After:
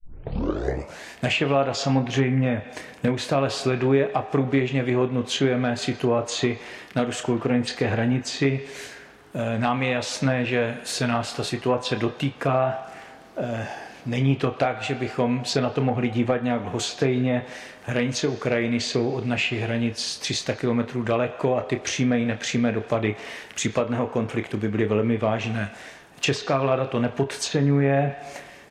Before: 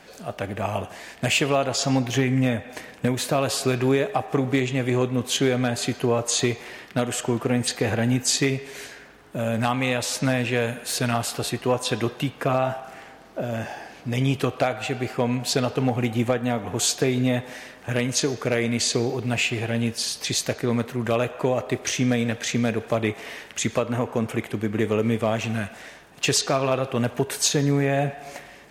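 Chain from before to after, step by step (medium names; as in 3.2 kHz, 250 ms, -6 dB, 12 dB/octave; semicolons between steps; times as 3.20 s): tape start-up on the opening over 1.08 s; low-pass that closes with the level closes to 2.4 kHz, closed at -17 dBFS; doubling 29 ms -9.5 dB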